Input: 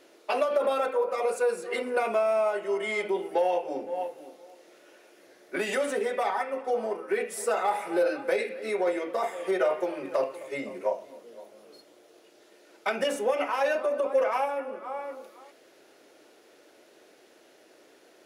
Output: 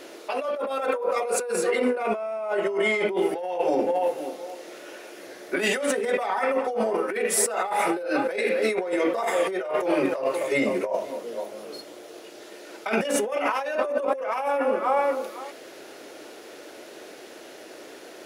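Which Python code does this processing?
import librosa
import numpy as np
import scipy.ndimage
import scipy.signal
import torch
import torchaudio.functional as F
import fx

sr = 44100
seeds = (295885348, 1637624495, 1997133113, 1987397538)

y = fx.high_shelf(x, sr, hz=3200.0, db=-6.5, at=(1.7, 3.17))
y = fx.over_compress(y, sr, threshold_db=-34.0, ratio=-1.0)
y = y * 10.0 ** (8.5 / 20.0)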